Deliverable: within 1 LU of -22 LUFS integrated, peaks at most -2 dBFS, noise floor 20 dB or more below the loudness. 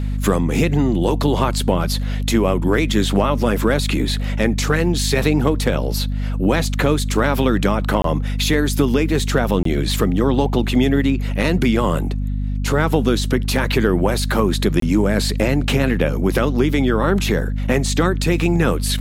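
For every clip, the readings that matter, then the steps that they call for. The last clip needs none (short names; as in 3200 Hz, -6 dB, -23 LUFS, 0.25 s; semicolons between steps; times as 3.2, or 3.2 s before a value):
dropouts 3; longest dropout 23 ms; hum 50 Hz; harmonics up to 250 Hz; hum level -19 dBFS; loudness -18.5 LUFS; peak -3.0 dBFS; loudness target -22.0 LUFS
-> interpolate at 8.02/9.63/14.8, 23 ms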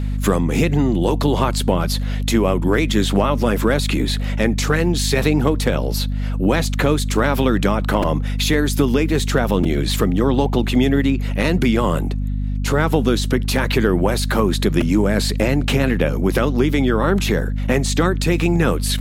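dropouts 0; hum 50 Hz; harmonics up to 250 Hz; hum level -19 dBFS
-> de-hum 50 Hz, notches 5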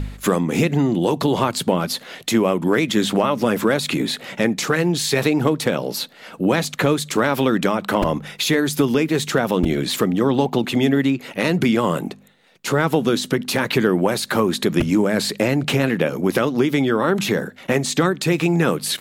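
hum none; loudness -20.0 LUFS; peak -4.5 dBFS; loudness target -22.0 LUFS
-> gain -2 dB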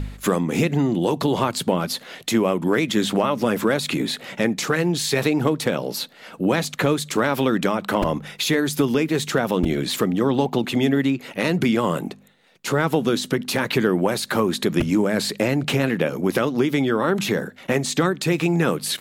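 loudness -22.0 LUFS; peak -6.5 dBFS; noise floor -45 dBFS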